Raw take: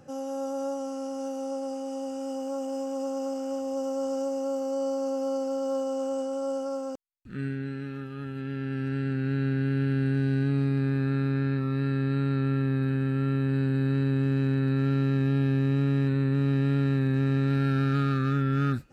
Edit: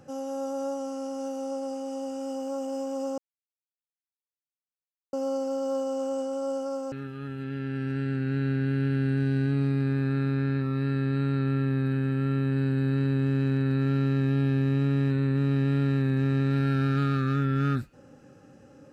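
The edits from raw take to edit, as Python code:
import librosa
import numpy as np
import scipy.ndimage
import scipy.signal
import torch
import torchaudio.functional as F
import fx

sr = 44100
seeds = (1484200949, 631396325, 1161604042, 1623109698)

y = fx.edit(x, sr, fx.silence(start_s=3.18, length_s=1.95),
    fx.cut(start_s=6.92, length_s=0.97), tone=tone)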